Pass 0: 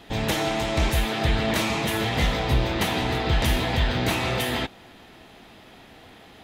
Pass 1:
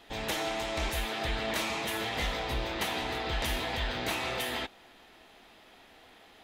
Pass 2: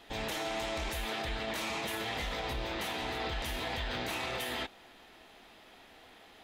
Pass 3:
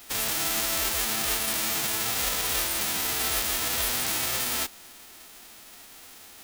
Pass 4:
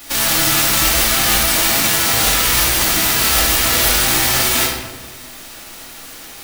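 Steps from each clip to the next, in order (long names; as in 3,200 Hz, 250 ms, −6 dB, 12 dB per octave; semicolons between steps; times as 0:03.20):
parametric band 120 Hz −11.5 dB 2.3 octaves; level −6 dB
brickwall limiter −27 dBFS, peak gain reduction 7.5 dB
spectral envelope flattened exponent 0.1; level +8.5 dB
rectangular room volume 620 cubic metres, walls mixed, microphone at 2.4 metres; level +8 dB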